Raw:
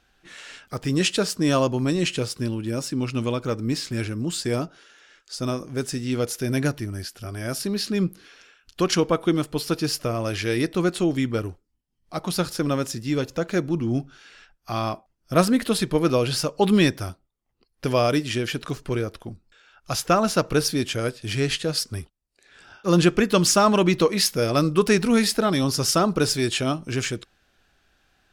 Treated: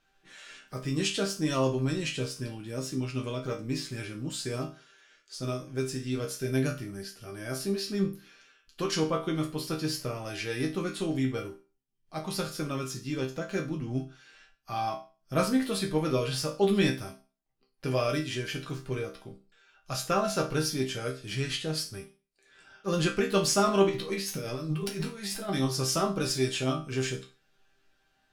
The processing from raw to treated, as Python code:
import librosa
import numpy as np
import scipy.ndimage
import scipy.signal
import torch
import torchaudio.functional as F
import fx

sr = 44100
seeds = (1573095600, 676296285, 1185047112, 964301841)

y = fx.over_compress(x, sr, threshold_db=-28.0, ratio=-1.0, at=(23.89, 25.49))
y = fx.resonator_bank(y, sr, root=48, chord='minor', decay_s=0.33)
y = F.gain(torch.from_numpy(y), 8.0).numpy()